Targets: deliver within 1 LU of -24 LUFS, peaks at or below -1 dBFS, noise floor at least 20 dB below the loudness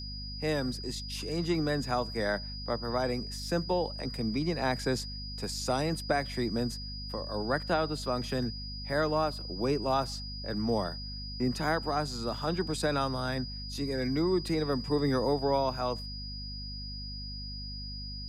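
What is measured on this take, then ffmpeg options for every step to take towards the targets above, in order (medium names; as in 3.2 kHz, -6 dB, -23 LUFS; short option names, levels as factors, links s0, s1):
hum 50 Hz; highest harmonic 250 Hz; hum level -39 dBFS; steady tone 4.9 kHz; tone level -41 dBFS; loudness -32.0 LUFS; peak level -15.5 dBFS; loudness target -24.0 LUFS
-> -af "bandreject=f=50:t=h:w=4,bandreject=f=100:t=h:w=4,bandreject=f=150:t=h:w=4,bandreject=f=200:t=h:w=4,bandreject=f=250:t=h:w=4"
-af "bandreject=f=4900:w=30"
-af "volume=2.51"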